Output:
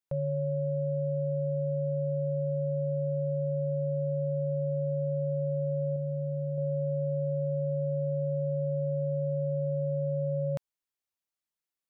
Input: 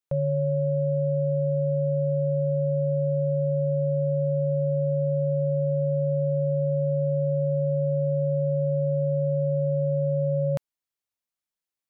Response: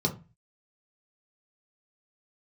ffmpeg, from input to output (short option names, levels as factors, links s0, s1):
-filter_complex "[0:a]asettb=1/sr,asplit=3[s0][s1][s2];[s0]atrim=end=5.964[s3];[s1]atrim=start=5.96:end=6.58,asetpts=PTS-STARTPTS,afade=t=in:d=0.004:c=qsin,afade=t=out:st=0.616:d=0.004:c=qsin,equalizer=f=450:w=0.54:g=-5[s4];[s2]atrim=start=6.576[s5];[s3][s4]acrossfade=d=0.004:c1=hsin:c2=qsin[s6];[s6][s5]acrossfade=d=0.004:c1=qsin:c2=hsin,asplit=2[s7][s8];[s8]alimiter=level_in=1.68:limit=0.0631:level=0:latency=1:release=61,volume=0.596,volume=0.708[s9];[s7][s9]amix=inputs=2:normalize=0,volume=0.422"